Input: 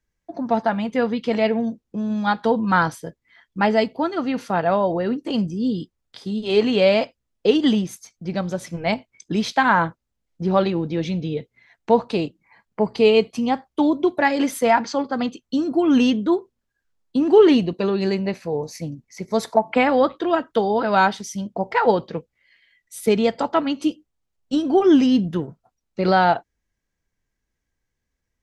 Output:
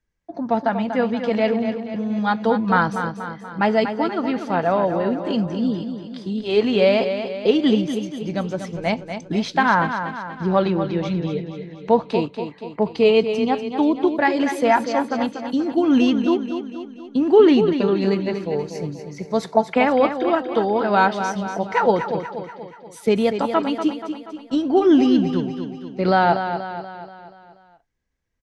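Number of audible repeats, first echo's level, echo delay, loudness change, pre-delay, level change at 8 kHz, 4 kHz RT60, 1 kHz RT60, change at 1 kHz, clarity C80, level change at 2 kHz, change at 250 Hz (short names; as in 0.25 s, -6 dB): 5, -8.5 dB, 0.24 s, 0.0 dB, none, n/a, none, none, +0.5 dB, none, 0.0 dB, +0.5 dB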